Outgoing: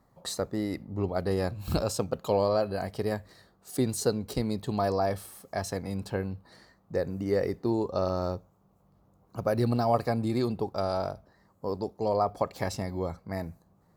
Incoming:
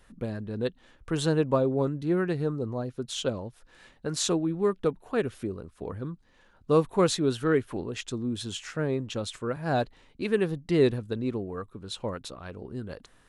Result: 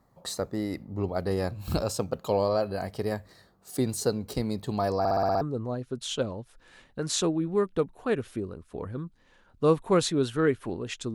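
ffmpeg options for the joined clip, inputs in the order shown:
ffmpeg -i cue0.wav -i cue1.wav -filter_complex "[0:a]apad=whole_dur=11.14,atrim=end=11.14,asplit=7[link_01][link_02][link_03][link_04][link_05][link_06][link_07];[link_01]atrim=end=5.052[link_08];[link_02]atrim=start=4.988:end=5.052[link_09];[link_03]atrim=start=4.988:end=5.052[link_10];[link_04]atrim=start=4.988:end=5.052[link_11];[link_05]atrim=start=4.988:end=5.052[link_12];[link_06]atrim=start=4.988:end=5.052[link_13];[link_07]atrim=start=4.988:end=5.052[link_14];[1:a]atrim=start=2.478:end=8.21[link_15];[link_08][link_09]acrossfade=duration=0.004:curve1=hsin:curve2=hsin[link_16];[link_16][link_10]acrossfade=duration=0.004:curve1=hsin:curve2=hsin[link_17];[link_17][link_11]acrossfade=duration=0.004:curve1=hsin:curve2=hsin[link_18];[link_18][link_12]acrossfade=duration=0.004:curve1=hsin:curve2=hsin[link_19];[link_19][link_13]acrossfade=duration=0.004:curve1=hsin:curve2=hsin[link_20];[link_20][link_14]acrossfade=duration=0.004:curve1=hsin:curve2=hsin[link_21];[link_21][link_15]acrossfade=duration=0.004:curve1=hsin:curve2=hsin" out.wav

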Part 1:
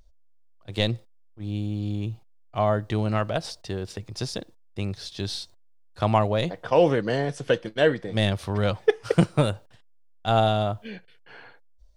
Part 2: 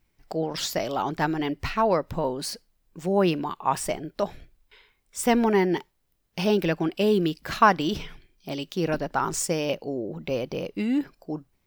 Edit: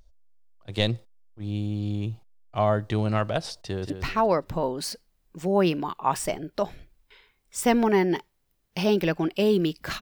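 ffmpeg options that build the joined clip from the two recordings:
ffmpeg -i cue0.wav -i cue1.wav -filter_complex "[0:a]apad=whole_dur=10.01,atrim=end=10.01,atrim=end=3.902[link_01];[1:a]atrim=start=1.508:end=7.62[link_02];[link_01][link_02]acrossfade=duration=0.004:curve1=hsin:curve2=hsin,asplit=2[link_03][link_04];[link_04]afade=type=in:start_time=3.64:duration=0.01,afade=type=out:start_time=3.9:duration=0.01,aecho=0:1:180|360|540|720:0.398107|0.139338|0.0487681|0.0170688[link_05];[link_03][link_05]amix=inputs=2:normalize=0" out.wav

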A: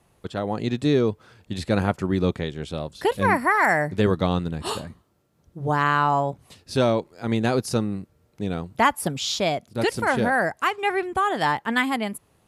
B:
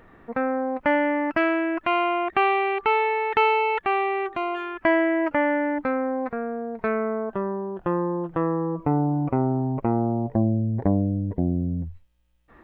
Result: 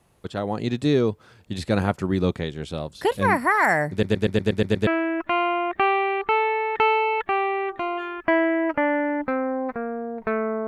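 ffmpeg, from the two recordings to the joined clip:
ffmpeg -i cue0.wav -i cue1.wav -filter_complex "[0:a]apad=whole_dur=10.67,atrim=end=10.67,asplit=8[link_01][link_02][link_03][link_04][link_05][link_06][link_07][link_08];[link_01]atrim=end=4.032[link_09];[link_02]atrim=start=3.908:end=4.032[link_10];[link_03]atrim=start=3.908:end=4.032[link_11];[link_04]atrim=start=3.908:end=4.032[link_12];[link_05]atrim=start=3.908:end=4.032[link_13];[link_06]atrim=start=3.908:end=4.032[link_14];[link_07]atrim=start=3.908:end=4.032[link_15];[link_08]atrim=start=3.908:end=4.032[link_16];[1:a]atrim=start=1.438:end=7.24[link_17];[link_09][link_10]acrossfade=duration=0.004:curve1=hsin:curve2=hsin[link_18];[link_18][link_11]acrossfade=duration=0.004:curve1=hsin:curve2=hsin[link_19];[link_19][link_12]acrossfade=duration=0.004:curve1=hsin:curve2=hsin[link_20];[link_20][link_13]acrossfade=duration=0.004:curve1=hsin:curve2=hsin[link_21];[link_21][link_14]acrossfade=duration=0.004:curve1=hsin:curve2=hsin[link_22];[link_22][link_15]acrossfade=duration=0.004:curve1=hsin:curve2=hsin[link_23];[link_23][link_16]acrossfade=duration=0.004:curve1=hsin:curve2=hsin[link_24];[link_24][link_17]acrossfade=duration=0.004:curve1=hsin:curve2=hsin" out.wav

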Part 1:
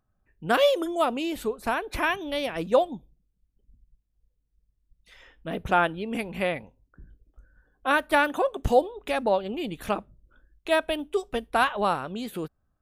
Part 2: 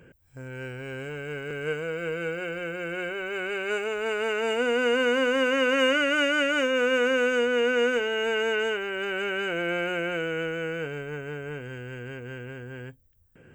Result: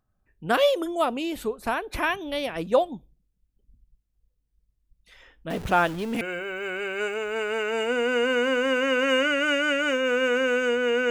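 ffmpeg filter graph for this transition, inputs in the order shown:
ffmpeg -i cue0.wav -i cue1.wav -filter_complex "[0:a]asettb=1/sr,asplit=3[link_01][link_02][link_03];[link_01]atrim=end=5.504[link_04];[link_02]atrim=start=5.5:end=6.21,asetpts=PTS-STARTPTS,afade=type=in:duration=0.004:curve=qsin,afade=type=out:start_time=0.706:duration=0.004:curve=qsin,aeval=exprs='val(0)+0.5*0.0211*sgn(val(0))':channel_layout=same[link_05];[link_03]atrim=start=6.206[link_06];[link_04][link_05]acrossfade=duration=0.004:curve1=hsin:curve2=qsin[link_07];[link_07][link_06]acrossfade=duration=0.004:curve1=qsin:curve2=hsin,apad=whole_dur=11.1,atrim=end=11.1,atrim=end=6.212[link_08];[1:a]atrim=start=2.908:end=7.8[link_09];[link_08][link_09]acrossfade=duration=0.004:curve1=hsin:curve2=hsin" out.wav

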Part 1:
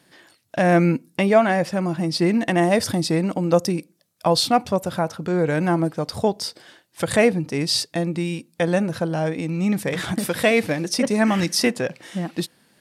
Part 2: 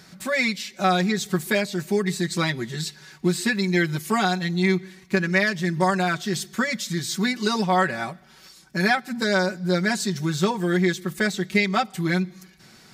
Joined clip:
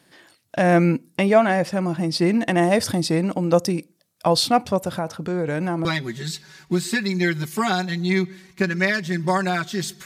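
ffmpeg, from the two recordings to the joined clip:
ffmpeg -i cue0.wav -i cue1.wav -filter_complex "[0:a]asettb=1/sr,asplit=3[link_01][link_02][link_03];[link_01]atrim=end=4.894[link_04];[link_02]atrim=start=4.89:end=5.85,asetpts=PTS-STARTPTS,afade=type=in:duration=0.004:curve=qsin,afade=type=out:start_time=0.956:duration=0.004:curve=qsin,acompressor=threshold=-21dB:ratio=2.5:attack=3.2:release=140:knee=1:detection=peak[link_05];[link_03]atrim=start=5.846[link_06];[link_04][link_05]acrossfade=duration=0.004:curve1=hsin:curve2=qsin[link_07];[link_07][link_06]acrossfade=duration=0.004:curve1=qsin:curve2=hsin,apad=whole_dur=10.05,atrim=end=10.05,atrim=end=5.852[link_08];[1:a]atrim=start=2.378:end=6.58[link_09];[link_08][link_09]acrossfade=duration=0.004:curve1=hsin:curve2=hsin" out.wav

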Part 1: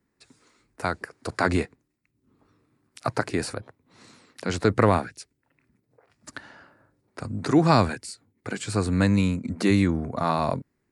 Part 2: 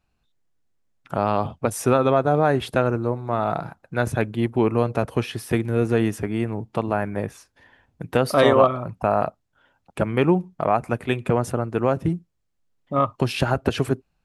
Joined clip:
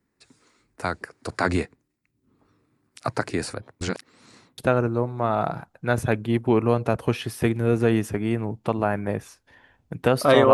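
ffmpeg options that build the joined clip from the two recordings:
ffmpeg -i cue0.wav -i cue1.wav -filter_complex "[0:a]apad=whole_dur=10.53,atrim=end=10.53,asplit=2[link_01][link_02];[link_01]atrim=end=3.812[link_03];[link_02]atrim=start=3.808:end=4.582,asetpts=PTS-STARTPTS,areverse[link_04];[1:a]atrim=start=2.668:end=8.62[link_05];[link_03][link_04]acrossfade=duration=0.004:curve1=hsin:curve2=hsin[link_06];[link_06][link_05]acrossfade=duration=0.004:curve1=hsin:curve2=hsin" out.wav

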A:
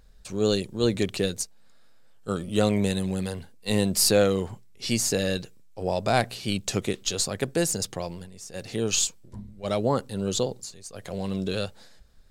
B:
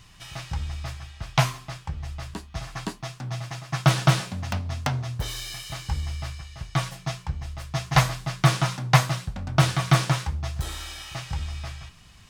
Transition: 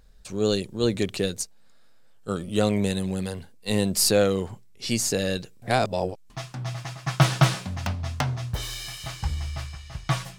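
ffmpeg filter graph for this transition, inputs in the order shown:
ffmpeg -i cue0.wav -i cue1.wav -filter_complex "[0:a]apad=whole_dur=10.38,atrim=end=10.38,asplit=2[link_01][link_02];[link_01]atrim=end=5.622[link_03];[link_02]atrim=start=5.618:end=6.302,asetpts=PTS-STARTPTS,areverse[link_04];[1:a]atrim=start=2.958:end=7.04[link_05];[link_03][link_04]acrossfade=duration=0.004:curve1=hsin:curve2=hsin[link_06];[link_06][link_05]acrossfade=duration=0.004:curve1=hsin:curve2=hsin" out.wav

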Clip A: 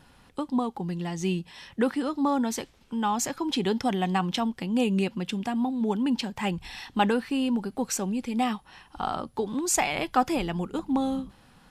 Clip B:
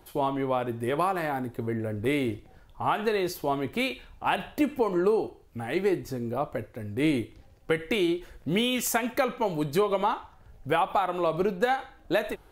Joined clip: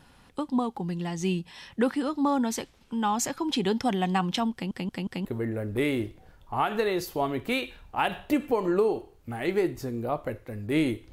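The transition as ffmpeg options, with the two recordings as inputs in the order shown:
ffmpeg -i cue0.wav -i cue1.wav -filter_complex "[0:a]apad=whole_dur=11.12,atrim=end=11.12,asplit=4[link_01][link_02][link_03][link_04];[link_01]atrim=end=4.712[link_05];[link_02]atrim=start=4.528:end=4.712[link_06];[link_03]atrim=start=4.528:end=4.712[link_07];[link_04]atrim=start=4.528:end=4.712[link_08];[1:a]atrim=start=1.528:end=7.4[link_09];[link_05][link_06]acrossfade=duration=0.004:curve1=hsin:curve2=hsin[link_10];[link_10][link_07]acrossfade=duration=0.004:curve1=hsin:curve2=hsin[link_11];[link_11][link_08]acrossfade=duration=0.004:curve1=hsin:curve2=hsin[link_12];[link_12][link_09]acrossfade=duration=0.004:curve1=hsin:curve2=hsin" out.wav

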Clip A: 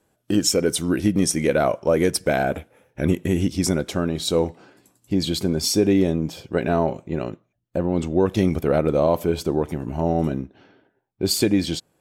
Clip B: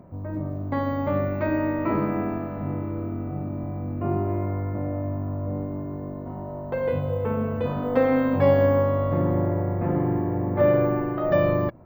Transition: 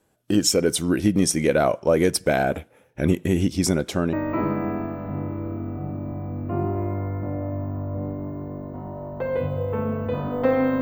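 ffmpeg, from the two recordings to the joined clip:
ffmpeg -i cue0.wav -i cue1.wav -filter_complex "[0:a]apad=whole_dur=10.81,atrim=end=10.81,atrim=end=4.132[link_01];[1:a]atrim=start=1.648:end=8.33[link_02];[link_01][link_02]acrossfade=duration=0.004:curve1=hsin:curve2=hsin" out.wav

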